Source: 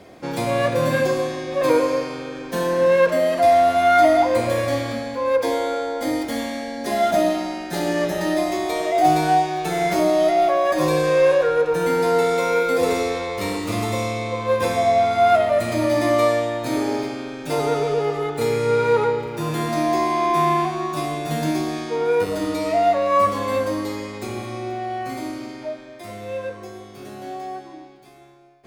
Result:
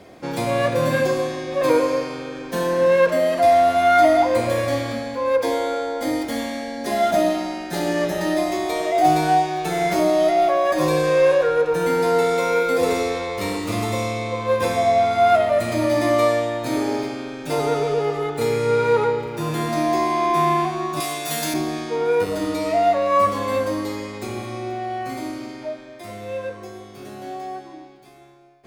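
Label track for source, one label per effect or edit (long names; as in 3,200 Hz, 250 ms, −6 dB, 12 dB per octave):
21.000000	21.540000	spectral tilt +3.5 dB per octave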